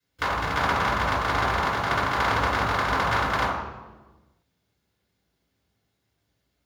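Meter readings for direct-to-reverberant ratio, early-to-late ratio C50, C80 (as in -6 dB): -10.5 dB, 0.5 dB, 3.0 dB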